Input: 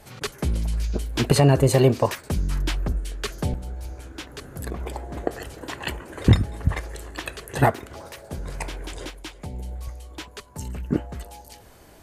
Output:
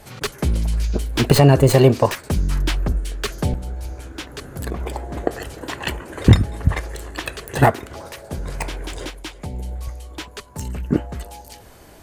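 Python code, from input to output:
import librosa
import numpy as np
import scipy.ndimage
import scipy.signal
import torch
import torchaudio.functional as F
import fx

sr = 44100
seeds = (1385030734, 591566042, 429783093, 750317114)

y = fx.tracing_dist(x, sr, depth_ms=0.056)
y = F.gain(torch.from_numpy(y), 4.5).numpy()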